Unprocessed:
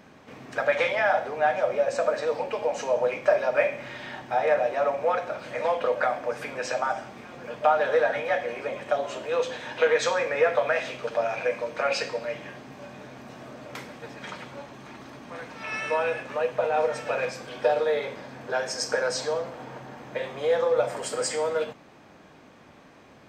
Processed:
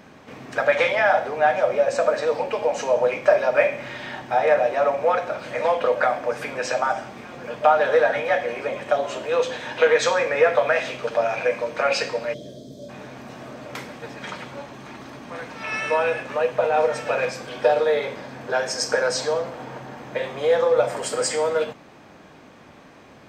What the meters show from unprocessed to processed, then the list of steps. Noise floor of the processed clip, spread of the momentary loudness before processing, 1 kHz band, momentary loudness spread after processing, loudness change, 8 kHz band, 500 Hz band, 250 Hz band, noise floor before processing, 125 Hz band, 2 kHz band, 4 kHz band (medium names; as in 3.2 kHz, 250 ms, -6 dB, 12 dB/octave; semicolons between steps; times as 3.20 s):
-47 dBFS, 18 LU, +4.5 dB, 18 LU, +4.5 dB, +4.5 dB, +4.5 dB, +4.5 dB, -52 dBFS, +4.5 dB, +4.5 dB, +4.5 dB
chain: time-frequency box 12.33–12.89 s, 700–3100 Hz -25 dB; trim +4.5 dB